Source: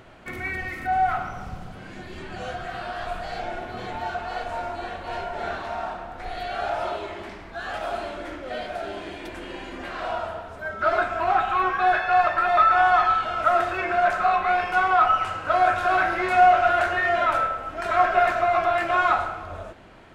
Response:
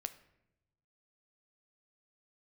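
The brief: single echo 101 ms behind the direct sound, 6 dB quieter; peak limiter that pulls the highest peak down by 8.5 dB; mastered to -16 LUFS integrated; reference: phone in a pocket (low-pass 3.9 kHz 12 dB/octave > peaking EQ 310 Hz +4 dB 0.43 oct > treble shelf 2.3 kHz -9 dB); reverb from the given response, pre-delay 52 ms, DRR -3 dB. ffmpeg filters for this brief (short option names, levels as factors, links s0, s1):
-filter_complex "[0:a]alimiter=limit=0.188:level=0:latency=1,aecho=1:1:101:0.501,asplit=2[s0][s1];[1:a]atrim=start_sample=2205,adelay=52[s2];[s1][s2]afir=irnorm=-1:irlink=0,volume=1.78[s3];[s0][s3]amix=inputs=2:normalize=0,lowpass=3900,equalizer=f=310:t=o:w=0.43:g=4,highshelf=f=2300:g=-9,volume=1.88"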